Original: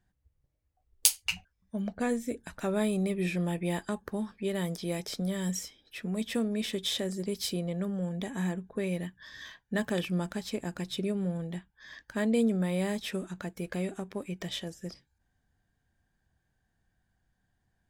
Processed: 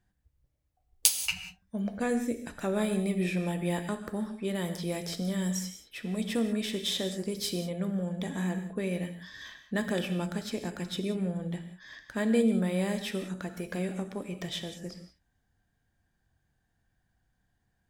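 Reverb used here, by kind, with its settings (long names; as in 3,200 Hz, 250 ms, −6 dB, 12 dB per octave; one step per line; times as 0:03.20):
reverb whose tail is shaped and stops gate 210 ms flat, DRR 7.5 dB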